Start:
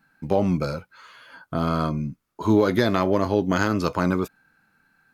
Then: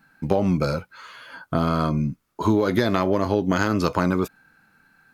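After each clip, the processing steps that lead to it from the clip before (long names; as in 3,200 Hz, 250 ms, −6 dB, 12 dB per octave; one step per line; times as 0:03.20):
downward compressor 5 to 1, threshold −21 dBFS, peak gain reduction 8 dB
level +5 dB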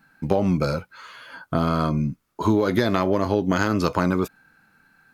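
no processing that can be heard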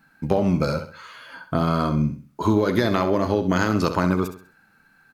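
repeating echo 66 ms, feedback 34%, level −10 dB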